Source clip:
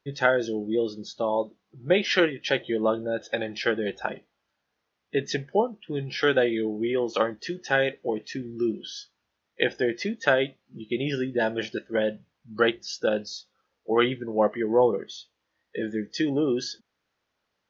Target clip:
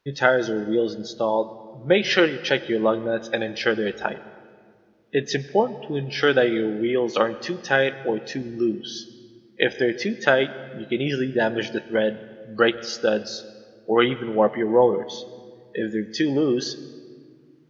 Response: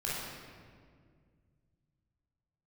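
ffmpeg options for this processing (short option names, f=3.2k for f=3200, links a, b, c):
-filter_complex "[0:a]asplit=2[a][b];[1:a]atrim=start_sample=2205,adelay=97[c];[b][c]afir=irnorm=-1:irlink=0,volume=-22dB[d];[a][d]amix=inputs=2:normalize=0,volume=3.5dB"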